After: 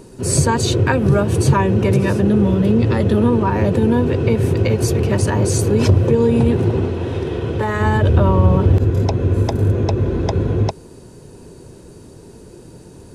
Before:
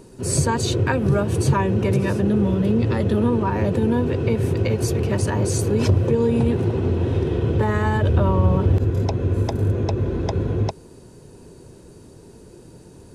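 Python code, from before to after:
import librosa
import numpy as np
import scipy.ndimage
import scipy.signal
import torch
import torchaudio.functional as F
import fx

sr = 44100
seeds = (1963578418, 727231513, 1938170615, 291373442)

y = fx.low_shelf(x, sr, hz=390.0, db=-7.5, at=(6.85, 7.8))
y = F.gain(torch.from_numpy(y), 4.5).numpy()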